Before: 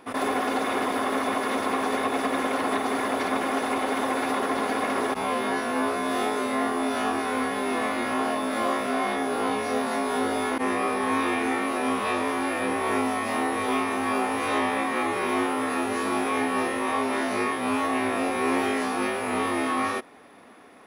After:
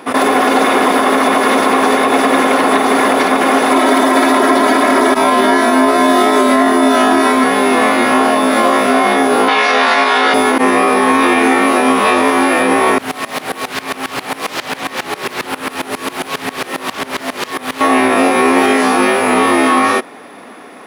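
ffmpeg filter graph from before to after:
ffmpeg -i in.wav -filter_complex "[0:a]asettb=1/sr,asplit=3[link_01][link_02][link_03];[link_01]atrim=end=3.714[link_04];[link_02]atrim=start=3.71:end=7.44,asetpts=PTS-STARTPTS,afade=type=in:duration=0.004:curve=qsin,afade=type=out:start_time=3.726:duration=0.004:curve=qsin,highpass=43,bandreject=frequency=2700:width=9.6,aecho=1:1:3.1:0.92,atrim=end_sample=164493[link_05];[link_03]atrim=start=7.436[link_06];[link_04][link_05]acrossfade=duration=0.004:curve1=hsin:curve2=qsin[link_07];[link_07][link_06]acrossfade=duration=0.004:curve1=qsin:curve2=hsin,asettb=1/sr,asplit=3[link_08][link_09][link_10];[link_08]atrim=end=9.484[link_11];[link_09]atrim=start=9.48:end=10.34,asetpts=PTS-STARTPTS,afade=type=in:duration=0.004:curve=qsin,afade=type=out:start_time=0.856:duration=0.004:curve=qsin,highpass=200,lowpass=4100,tiltshelf=frequency=720:gain=-9.5[link_12];[link_10]atrim=start=10.336[link_13];[link_11][link_12]acrossfade=duration=0.004:curve1=hsin:curve2=qsin[link_14];[link_14][link_13]acrossfade=duration=0.004:curve1=qsin:curve2=hsin,asettb=1/sr,asplit=3[link_15][link_16][link_17];[link_15]atrim=end=12.984[link_18];[link_16]atrim=start=12.98:end=17.81,asetpts=PTS-STARTPTS,afade=type=in:duration=0.004:curve=qsin,afade=type=out:start_time=4.826:duration=0.004:curve=qsin,highpass=frequency=210:poles=1,aeval=exprs='0.0501*(abs(mod(val(0)/0.0501+3,4)-2)-1)':channel_layout=same,aeval=exprs='val(0)*pow(10,-21*if(lt(mod(-7.4*n/s,1),2*abs(-7.4)/1000),1-mod(-7.4*n/s,1)/(2*abs(-7.4)/1000),(mod(-7.4*n/s,1)-2*abs(-7.4)/1000)/(1-2*abs(-7.4)/1000))/20)':channel_layout=same[link_19];[link_17]atrim=start=17.806[link_20];[link_18][link_19]acrossfade=duration=0.004:curve1=hsin:curve2=qsin[link_21];[link_21][link_20]acrossfade=duration=0.004:curve1=qsin:curve2=hsin,highpass=150,acontrast=32,alimiter=level_in=11.5dB:limit=-1dB:release=50:level=0:latency=1,volume=-1dB" out.wav

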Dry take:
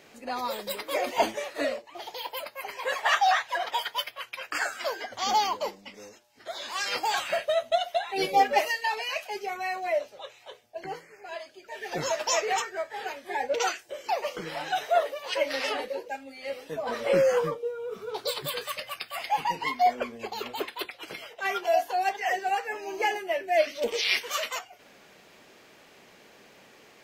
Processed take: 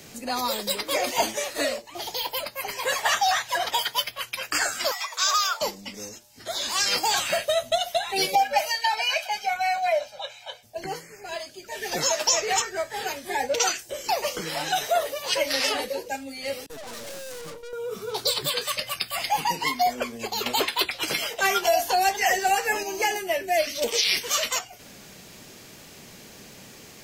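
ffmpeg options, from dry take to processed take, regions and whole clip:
ffmpeg -i in.wav -filter_complex "[0:a]asettb=1/sr,asplit=3[link_01][link_02][link_03];[link_01]atrim=end=4.914[link_04];[link_02]atrim=start=4.91:end=5.61,asetpts=PTS-STARTPTS,afade=type=in:duration=0.004:curve=qsin,afade=type=out:start_time=0.696:duration=0.004:curve=qsin,afreqshift=380,bandreject=frequency=810:width=14[link_05];[link_03]atrim=start=5.606[link_06];[link_04][link_05]acrossfade=duration=0.004:curve1=hsin:curve2=qsin[link_07];[link_07][link_06]acrossfade=duration=0.004:curve1=qsin:curve2=hsin,asettb=1/sr,asplit=3[link_08][link_09][link_10];[link_08]atrim=end=8.354[link_11];[link_09]atrim=start=8.35:end=10.63,asetpts=PTS-STARTPTS,afade=type=in:duration=0.004:curve=qsin,afade=type=out:start_time=2.276:duration=0.004:curve=qsin,acrossover=split=450 4800:gain=0.178 1 0.224[link_12][link_13][link_14];[link_12][link_13][link_14]amix=inputs=3:normalize=0,aecho=1:1:1.3:0.99,atrim=end_sample=100548[link_15];[link_10]atrim=start=10.626[link_16];[link_11][link_15]acrossfade=duration=0.004:curve1=hsin:curve2=qsin[link_17];[link_17][link_16]acrossfade=duration=0.004:curve1=qsin:curve2=hsin,asettb=1/sr,asplit=3[link_18][link_19][link_20];[link_18]atrim=end=16.664[link_21];[link_19]atrim=start=16.66:end=17.73,asetpts=PTS-STARTPTS,afade=type=in:duration=0.004:curve=qsin,afade=type=out:start_time=1.066:duration=0.004:curve=qsin,agate=range=-33dB:threshold=-39dB:ratio=3:release=100:detection=peak,aeval=exprs='(tanh(141*val(0)+0.7)-tanh(0.7))/141':channel_layout=same[link_22];[link_20]atrim=start=17.726[link_23];[link_21][link_22]acrossfade=duration=0.004:curve1=hsin:curve2=qsin[link_24];[link_24][link_23]acrossfade=duration=0.004:curve1=qsin:curve2=hsin,asettb=1/sr,asplit=3[link_25][link_26][link_27];[link_25]atrim=end=20.464[link_28];[link_26]atrim=start=20.46:end=22.83,asetpts=PTS-STARTPTS,afade=type=in:duration=0.004:curve=qsin,afade=type=out:start_time=2.366:duration=0.004:curve=qsin,asplit=2[link_29][link_30];[link_30]adelay=13,volume=-11dB[link_31];[link_29][link_31]amix=inputs=2:normalize=0,atrim=end_sample=104517,acontrast=82[link_32];[link_27]atrim=start=22.826[link_33];[link_28][link_32]acrossfade=duration=0.004:curve1=hsin:curve2=qsin[link_34];[link_34][link_33]acrossfade=duration=0.004:curve1=qsin:curve2=hsin,bass=frequency=250:gain=14,treble=frequency=4000:gain=13,acrossover=split=220|500|7300[link_35][link_36][link_37][link_38];[link_35]acompressor=threshold=-52dB:ratio=4[link_39];[link_36]acompressor=threshold=-40dB:ratio=4[link_40];[link_37]acompressor=threshold=-24dB:ratio=4[link_41];[link_38]acompressor=threshold=-39dB:ratio=4[link_42];[link_39][link_40][link_41][link_42]amix=inputs=4:normalize=0,volume=3.5dB" out.wav

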